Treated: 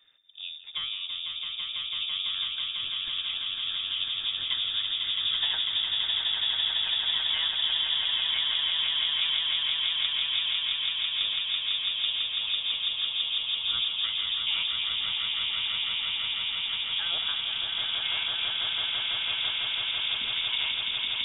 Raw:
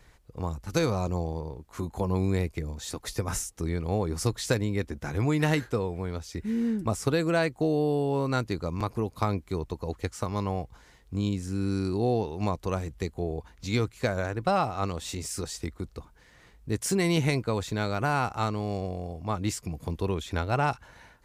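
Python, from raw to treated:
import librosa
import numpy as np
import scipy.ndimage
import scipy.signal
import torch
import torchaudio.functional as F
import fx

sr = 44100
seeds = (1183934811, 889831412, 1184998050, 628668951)

y = fx.echo_swell(x, sr, ms=166, loudest=8, wet_db=-4)
y = fx.freq_invert(y, sr, carrier_hz=3600)
y = y * 10.0 ** (-8.5 / 20.0)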